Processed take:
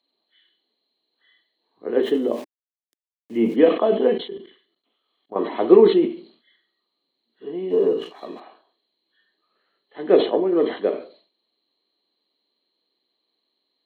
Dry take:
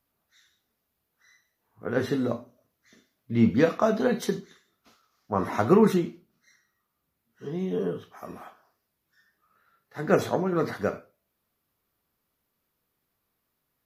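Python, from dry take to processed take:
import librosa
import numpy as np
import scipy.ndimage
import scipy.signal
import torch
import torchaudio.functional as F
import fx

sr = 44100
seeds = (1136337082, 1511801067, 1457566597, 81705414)

y = fx.freq_compress(x, sr, knee_hz=2800.0, ratio=4.0)
y = fx.sample_gate(y, sr, floor_db=-45.0, at=(2.03, 3.56))
y = fx.leveller(y, sr, passes=1, at=(7.7, 8.4))
y = fx.dynamic_eq(y, sr, hz=420.0, q=1.4, threshold_db=-32.0, ratio=4.0, max_db=5)
y = fx.ladder_highpass(y, sr, hz=260.0, resonance_pct=40)
y = fx.level_steps(y, sr, step_db=20, at=(4.17, 5.36))
y = fx.peak_eq(y, sr, hz=1400.0, db=-13.0, octaves=0.27)
y = fx.sustainer(y, sr, db_per_s=130.0)
y = y * librosa.db_to_amplitude(8.0)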